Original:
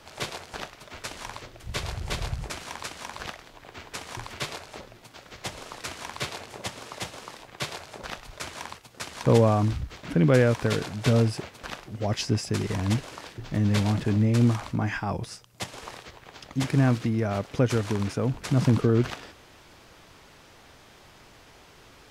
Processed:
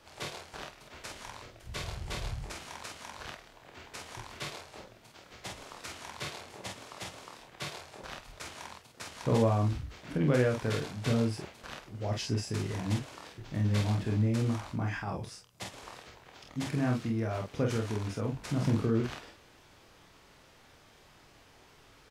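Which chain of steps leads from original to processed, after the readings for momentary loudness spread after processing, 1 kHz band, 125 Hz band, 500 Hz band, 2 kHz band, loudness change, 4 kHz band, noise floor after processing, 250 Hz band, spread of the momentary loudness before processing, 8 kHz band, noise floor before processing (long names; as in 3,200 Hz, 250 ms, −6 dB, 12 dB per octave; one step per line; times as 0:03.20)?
18 LU, −6.0 dB, −6.5 dB, −7.0 dB, −6.5 dB, −6.5 dB, −6.5 dB, −59 dBFS, −6.5 dB, 19 LU, −6.5 dB, −53 dBFS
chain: ambience of single reflections 27 ms −5.5 dB, 48 ms −4.5 dB
level −8.5 dB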